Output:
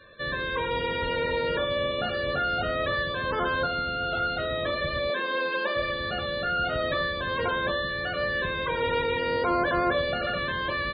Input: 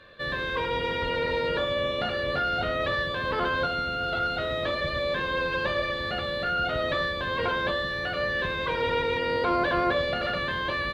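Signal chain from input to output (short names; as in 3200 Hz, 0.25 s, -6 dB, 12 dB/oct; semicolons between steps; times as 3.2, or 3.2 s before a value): 5.1–5.76 HPF 230 Hz 24 dB/oct; loudest bins only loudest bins 64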